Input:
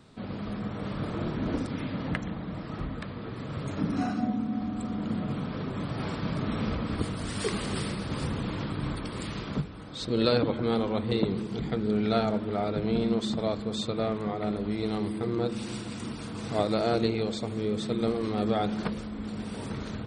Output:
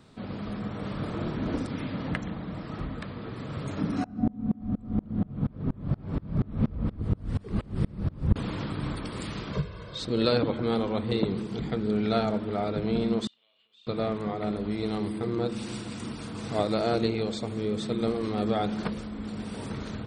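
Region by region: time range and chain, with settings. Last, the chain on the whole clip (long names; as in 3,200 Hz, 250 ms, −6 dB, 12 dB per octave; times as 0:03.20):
0:04.04–0:08.36: spectral tilt −4.5 dB per octave + mains-hum notches 60/120/180/240/300/360/420/480 Hz + tremolo with a ramp in dB swelling 4.2 Hz, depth 31 dB
0:09.53–0:09.99: low-pass filter 6,700 Hz 24 dB per octave + notch filter 850 Hz, Q 15 + comb filter 1.9 ms, depth 91%
0:13.27–0:13.87: flutter between parallel walls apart 5.3 metres, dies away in 0.26 s + downward compressor 12 to 1, threshold −31 dBFS + resonant band-pass 2,900 Hz, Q 18
whole clip: no processing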